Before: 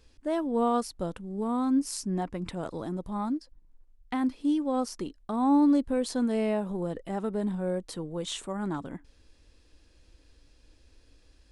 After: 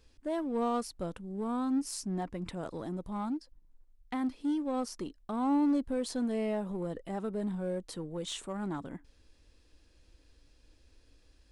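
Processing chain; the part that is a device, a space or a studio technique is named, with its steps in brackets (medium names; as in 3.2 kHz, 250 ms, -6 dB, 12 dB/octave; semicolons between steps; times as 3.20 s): parallel distortion (in parallel at -5.5 dB: hard clipper -30 dBFS, distortion -6 dB); on the sum: trim -7 dB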